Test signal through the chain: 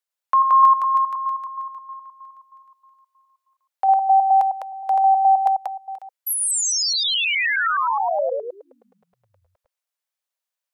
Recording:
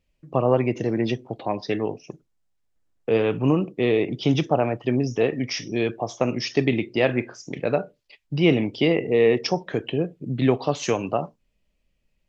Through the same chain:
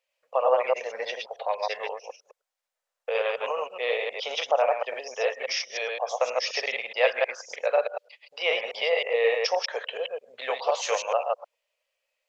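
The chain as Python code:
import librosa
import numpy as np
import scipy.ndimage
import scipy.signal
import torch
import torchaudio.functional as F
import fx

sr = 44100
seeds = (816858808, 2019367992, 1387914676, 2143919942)

y = fx.reverse_delay(x, sr, ms=105, wet_db=-2)
y = scipy.signal.sosfilt(scipy.signal.ellip(4, 1.0, 40, 510.0, 'highpass', fs=sr, output='sos'), y)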